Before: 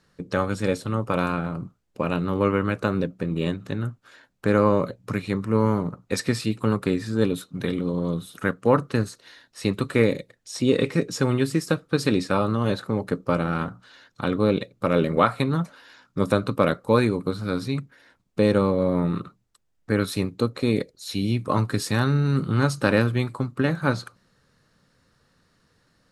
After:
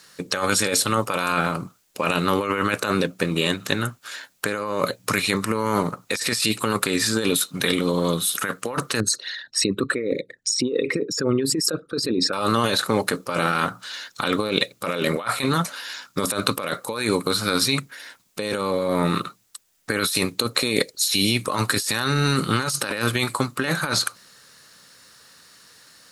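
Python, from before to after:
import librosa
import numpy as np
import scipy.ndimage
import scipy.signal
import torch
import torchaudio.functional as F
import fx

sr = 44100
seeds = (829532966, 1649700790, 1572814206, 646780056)

y = fx.envelope_sharpen(x, sr, power=2.0, at=(9.0, 12.33))
y = fx.tilt_eq(y, sr, slope=4.0)
y = fx.over_compress(y, sr, threshold_db=-30.0, ratio=-1.0)
y = y * 10.0 ** (7.5 / 20.0)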